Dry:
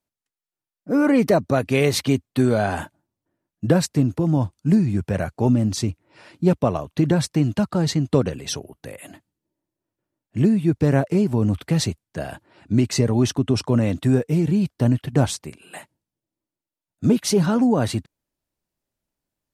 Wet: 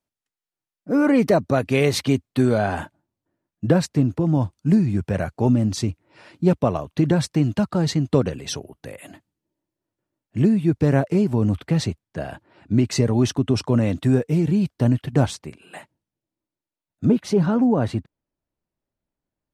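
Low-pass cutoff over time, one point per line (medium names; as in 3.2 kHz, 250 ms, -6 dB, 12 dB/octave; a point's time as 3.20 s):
low-pass 6 dB/octave
8 kHz
from 2.58 s 4.2 kHz
from 4.35 s 7.5 kHz
from 11.58 s 3.3 kHz
from 12.87 s 7.8 kHz
from 15.26 s 3.8 kHz
from 17.05 s 1.5 kHz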